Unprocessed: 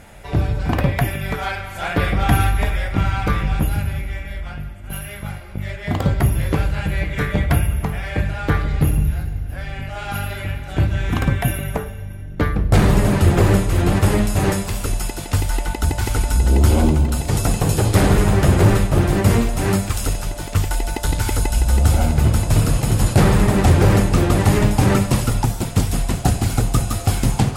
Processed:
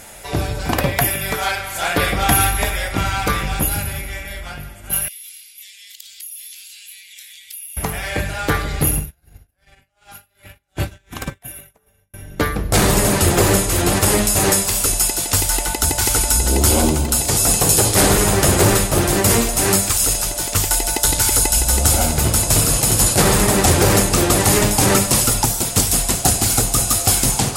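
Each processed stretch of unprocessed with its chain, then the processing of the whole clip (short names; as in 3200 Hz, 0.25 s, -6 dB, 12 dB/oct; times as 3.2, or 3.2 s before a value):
5.08–7.77 inverse Chebyshev high-pass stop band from 1100 Hz, stop band 50 dB + compressor 5:1, threshold -46 dBFS
8.99–12.14 tremolo 2.7 Hz, depth 72% + upward expander 2.5:1, over -36 dBFS
whole clip: tone controls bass -8 dB, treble +12 dB; maximiser +4.5 dB; gain -1 dB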